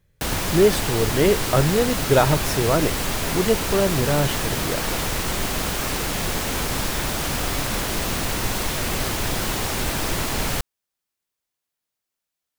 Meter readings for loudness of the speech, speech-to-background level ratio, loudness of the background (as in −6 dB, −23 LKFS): −22.0 LKFS, 2.0 dB, −24.0 LKFS